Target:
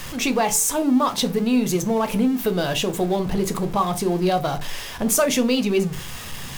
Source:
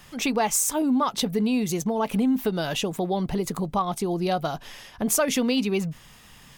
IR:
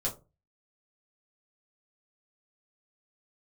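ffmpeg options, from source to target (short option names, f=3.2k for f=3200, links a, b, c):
-filter_complex "[0:a]aeval=exprs='val(0)+0.5*0.0224*sgn(val(0))':c=same,asplit=2[a][b];[1:a]atrim=start_sample=2205,asetrate=32634,aresample=44100[c];[b][c]afir=irnorm=-1:irlink=0,volume=-11.5dB[d];[a][d]amix=inputs=2:normalize=0"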